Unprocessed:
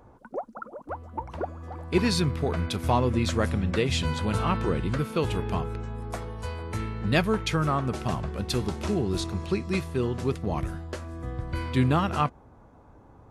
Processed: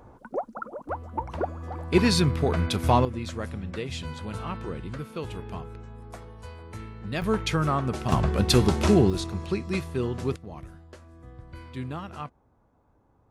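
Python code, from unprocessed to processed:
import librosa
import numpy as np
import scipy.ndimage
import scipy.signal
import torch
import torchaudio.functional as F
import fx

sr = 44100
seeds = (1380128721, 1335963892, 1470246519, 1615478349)

y = fx.gain(x, sr, db=fx.steps((0.0, 3.0), (3.05, -8.0), (7.22, 0.5), (8.12, 8.0), (9.1, -1.0), (10.36, -12.0)))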